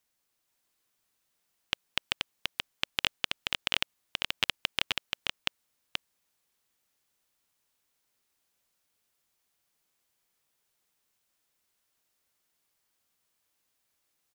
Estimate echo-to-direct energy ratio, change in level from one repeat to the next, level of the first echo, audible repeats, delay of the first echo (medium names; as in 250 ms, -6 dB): -3.5 dB, no regular repeats, -3.5 dB, 1, 480 ms